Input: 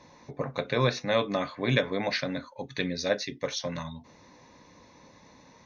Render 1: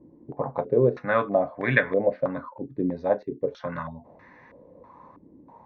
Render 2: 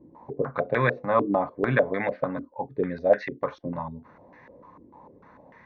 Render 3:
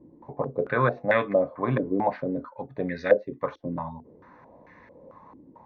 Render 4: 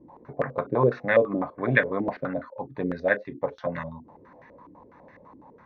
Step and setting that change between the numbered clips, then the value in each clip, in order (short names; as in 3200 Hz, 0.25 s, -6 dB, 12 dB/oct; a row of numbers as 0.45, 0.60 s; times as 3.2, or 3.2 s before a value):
stepped low-pass, rate: 3.1, 6.7, 4.5, 12 Hz